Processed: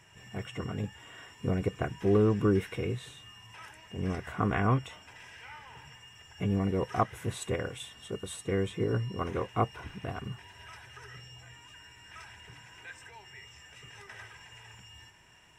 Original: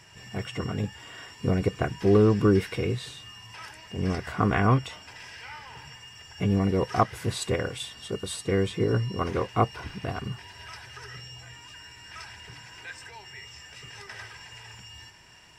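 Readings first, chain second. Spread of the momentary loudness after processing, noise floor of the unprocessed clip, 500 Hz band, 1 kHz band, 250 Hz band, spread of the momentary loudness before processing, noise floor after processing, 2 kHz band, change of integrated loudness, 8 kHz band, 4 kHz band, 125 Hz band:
22 LU, −49 dBFS, −5.0 dB, −5.0 dB, −5.0 dB, 21 LU, −55 dBFS, −5.5 dB, −5.0 dB, −6.0 dB, −7.5 dB, −5.0 dB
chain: parametric band 4,700 Hz −14 dB 0.34 octaves
level −5 dB

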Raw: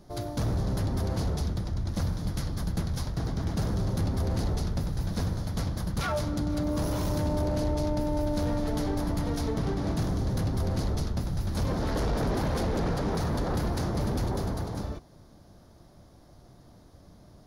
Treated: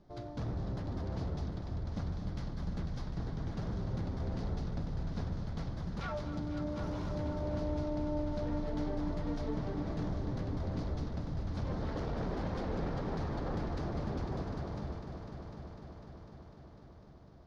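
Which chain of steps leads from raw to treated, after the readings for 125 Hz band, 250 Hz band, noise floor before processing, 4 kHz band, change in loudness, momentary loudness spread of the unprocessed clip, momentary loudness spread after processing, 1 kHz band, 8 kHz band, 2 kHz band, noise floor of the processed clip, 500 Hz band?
−8.0 dB, −7.0 dB, −54 dBFS, −12.5 dB, −8.0 dB, 3 LU, 10 LU, −8.0 dB, below −15 dB, −8.5 dB, −54 dBFS, −7.5 dB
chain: high-frequency loss of the air 160 metres
mains-hum notches 50/100 Hz
echo machine with several playback heads 250 ms, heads all three, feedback 67%, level −14 dB
level −8.5 dB

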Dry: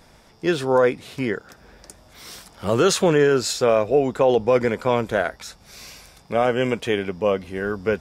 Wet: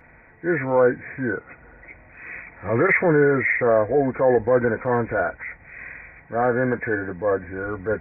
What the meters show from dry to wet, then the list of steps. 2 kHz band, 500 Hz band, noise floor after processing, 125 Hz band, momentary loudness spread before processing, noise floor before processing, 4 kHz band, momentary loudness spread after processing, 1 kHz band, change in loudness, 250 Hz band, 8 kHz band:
+5.0 dB, −1.0 dB, −51 dBFS, +0.5 dB, 21 LU, −52 dBFS, below −35 dB, 18 LU, −0.5 dB, −0.5 dB, −0.5 dB, below −40 dB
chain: hearing-aid frequency compression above 1,400 Hz 4 to 1
notch comb filter 200 Hz
transient designer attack −5 dB, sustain +1 dB
level +1.5 dB

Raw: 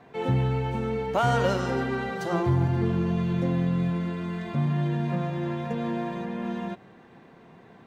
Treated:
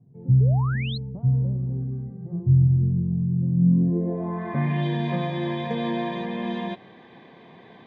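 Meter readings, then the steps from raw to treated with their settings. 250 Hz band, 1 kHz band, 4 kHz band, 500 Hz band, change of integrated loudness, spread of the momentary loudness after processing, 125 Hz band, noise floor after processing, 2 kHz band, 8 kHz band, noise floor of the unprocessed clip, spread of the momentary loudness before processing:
+2.5 dB, −4.0 dB, +2.0 dB, −3.5 dB, +3.5 dB, 11 LU, +6.0 dB, −49 dBFS, −2.5 dB, can't be measured, −52 dBFS, 8 LU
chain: low-pass filter sweep 130 Hz → 3,500 Hz, 0:03.53–0:04.86
notch comb filter 1,400 Hz
sound drawn into the spectrogram rise, 0:00.40–0:00.98, 390–4,400 Hz −39 dBFS
level +3.5 dB

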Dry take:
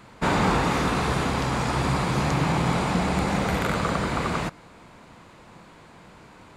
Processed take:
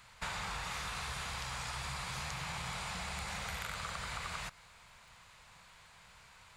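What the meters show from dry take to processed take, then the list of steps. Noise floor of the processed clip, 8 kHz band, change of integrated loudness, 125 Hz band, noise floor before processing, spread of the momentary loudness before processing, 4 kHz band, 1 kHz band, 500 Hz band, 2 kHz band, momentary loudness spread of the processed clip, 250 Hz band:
−60 dBFS, −7.0 dB, −15.5 dB, −20.0 dB, −50 dBFS, 4 LU, −8.5 dB, −16.5 dB, −24.0 dB, −11.5 dB, 18 LU, −27.0 dB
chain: guitar amp tone stack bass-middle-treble 10-0-10
downward compressor 4 to 1, threshold −37 dBFS, peak gain reduction 8 dB
surface crackle 95 per second −58 dBFS
level −1 dB

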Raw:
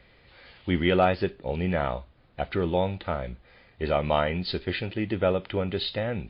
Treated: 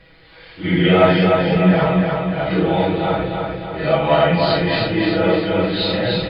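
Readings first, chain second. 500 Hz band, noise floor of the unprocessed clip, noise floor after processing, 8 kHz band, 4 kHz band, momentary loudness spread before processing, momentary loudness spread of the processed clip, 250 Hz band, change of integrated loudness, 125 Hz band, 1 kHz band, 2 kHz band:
+10.0 dB, −58 dBFS, −46 dBFS, can't be measured, +11.0 dB, 11 LU, 8 LU, +12.5 dB, +10.5 dB, +11.0 dB, +9.5 dB, +11.0 dB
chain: random phases in long frames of 200 ms
comb filter 6.2 ms, depth 77%
repeating echo 301 ms, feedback 53%, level −3.5 dB
level +7 dB

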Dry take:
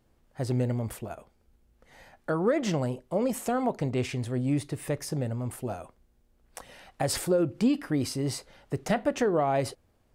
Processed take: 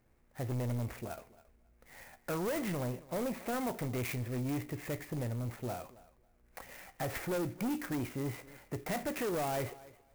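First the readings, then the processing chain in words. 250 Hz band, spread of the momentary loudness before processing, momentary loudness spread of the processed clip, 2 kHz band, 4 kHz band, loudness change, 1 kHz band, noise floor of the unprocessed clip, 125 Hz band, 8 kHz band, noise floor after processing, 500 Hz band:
−8.5 dB, 14 LU, 15 LU, −4.0 dB, −8.5 dB, −8.0 dB, −7.5 dB, −67 dBFS, −6.5 dB, −8.5 dB, −68 dBFS, −9.0 dB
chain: high shelf with overshoot 3,400 Hz −14 dB, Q 3
tuned comb filter 60 Hz, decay 0.29 s, harmonics all, mix 50%
soft clipping −31 dBFS, distortion −9 dB
feedback echo with a high-pass in the loop 273 ms, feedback 18%, high-pass 170 Hz, level −19 dB
converter with an unsteady clock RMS 0.056 ms

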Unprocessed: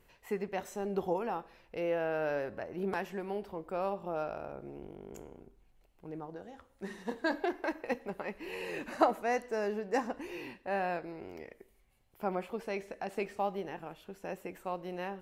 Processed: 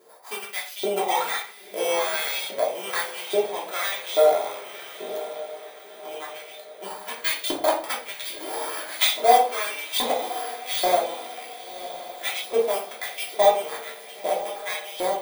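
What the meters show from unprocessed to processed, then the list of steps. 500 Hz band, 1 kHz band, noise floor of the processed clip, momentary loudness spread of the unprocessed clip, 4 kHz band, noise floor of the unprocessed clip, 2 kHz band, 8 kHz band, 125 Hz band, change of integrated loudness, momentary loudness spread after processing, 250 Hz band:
+10.5 dB, +12.0 dB, −44 dBFS, 14 LU, +24.0 dB, −66 dBFS, +10.5 dB, +23.5 dB, can't be measured, +11.5 dB, 16 LU, −1.0 dB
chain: samples in bit-reversed order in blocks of 16 samples
in parallel at −8 dB: decimation without filtering 14×
on the sum: auto-filter high-pass saw up 1.2 Hz 450–3,800 Hz
feedback delay with all-pass diffusion 1,043 ms, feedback 50%, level −13.5 dB
rectangular room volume 310 cubic metres, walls furnished, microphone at 3 metres
level +4.5 dB

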